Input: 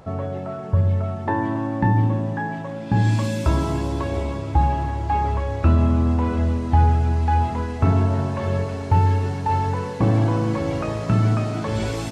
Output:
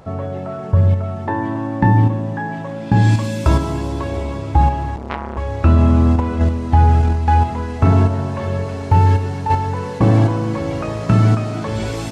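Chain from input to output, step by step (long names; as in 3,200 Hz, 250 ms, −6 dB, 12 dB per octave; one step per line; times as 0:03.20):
in parallel at +1.5 dB: output level in coarse steps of 19 dB
0:04.96–0:05.37: on the sum: saturating transformer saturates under 1,500 Hz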